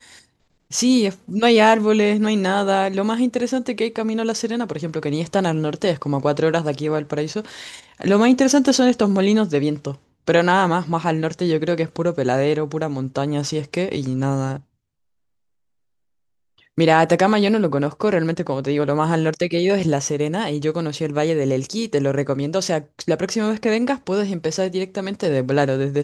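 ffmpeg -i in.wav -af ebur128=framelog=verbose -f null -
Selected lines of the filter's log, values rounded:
Integrated loudness:
  I:         -19.9 LUFS
  Threshold: -30.1 LUFS
Loudness range:
  LRA:         5.0 LU
  Threshold: -40.5 LUFS
  LRA low:   -22.9 LUFS
  LRA high:  -17.9 LUFS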